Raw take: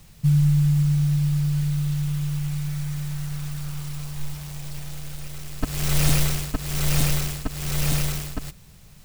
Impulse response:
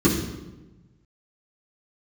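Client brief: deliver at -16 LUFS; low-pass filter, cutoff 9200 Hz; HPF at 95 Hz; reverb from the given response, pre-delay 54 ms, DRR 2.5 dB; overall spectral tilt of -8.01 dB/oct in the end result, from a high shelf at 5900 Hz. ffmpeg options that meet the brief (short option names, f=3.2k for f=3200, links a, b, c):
-filter_complex "[0:a]highpass=95,lowpass=9.2k,highshelf=f=5.9k:g=3,asplit=2[a][b];[1:a]atrim=start_sample=2205,adelay=54[c];[b][c]afir=irnorm=-1:irlink=0,volume=-19.5dB[d];[a][d]amix=inputs=2:normalize=0,volume=1.5dB"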